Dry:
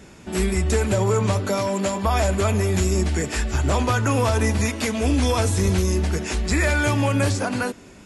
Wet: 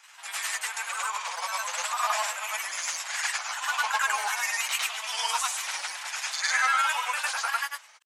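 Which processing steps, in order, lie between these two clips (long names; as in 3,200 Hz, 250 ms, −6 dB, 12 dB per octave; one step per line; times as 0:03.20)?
Butterworth high-pass 880 Hz 36 dB per octave
granular cloud, pitch spread up and down by 3 semitones
backwards echo 104 ms −3 dB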